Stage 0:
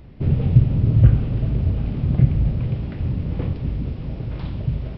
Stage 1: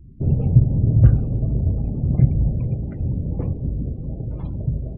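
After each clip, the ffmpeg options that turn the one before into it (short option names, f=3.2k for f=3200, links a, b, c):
-af "afftdn=nr=31:nf=-39"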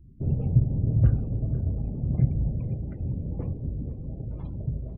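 -filter_complex "[0:a]asplit=2[a][b];[b]adelay=489.8,volume=-15dB,highshelf=f=4k:g=-11[c];[a][c]amix=inputs=2:normalize=0,volume=-7dB"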